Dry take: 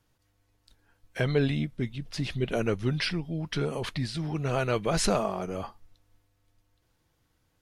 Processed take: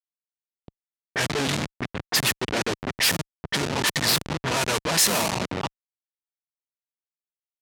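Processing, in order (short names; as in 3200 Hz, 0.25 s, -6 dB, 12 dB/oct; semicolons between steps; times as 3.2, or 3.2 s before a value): small resonant body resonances 940/1800 Hz, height 14 dB, ringing for 25 ms; in parallel at +2.5 dB: compressor 8:1, threshold -39 dBFS, peak gain reduction 19.5 dB; on the sum: hard clip -24.5 dBFS, distortion -8 dB; tilt shelf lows -9.5 dB, about 1200 Hz; on a send: echo 0.169 s -20.5 dB; on the sum: Schmitt trigger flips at -28.5 dBFS; HPF 120 Hz 12 dB/oct; high shelf 3100 Hz +10 dB; low-pass opened by the level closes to 730 Hz, open at -25 dBFS; gain +8 dB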